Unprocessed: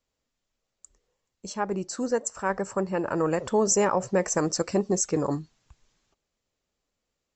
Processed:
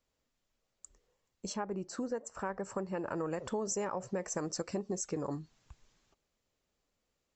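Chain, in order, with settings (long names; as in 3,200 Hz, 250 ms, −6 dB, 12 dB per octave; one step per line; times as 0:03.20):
high-shelf EQ 3,300 Hz −2.5 dB, from 0:01.56 −10.5 dB, from 0:02.63 −2 dB
downward compressor 4 to 1, threshold −35 dBFS, peak gain reduction 14 dB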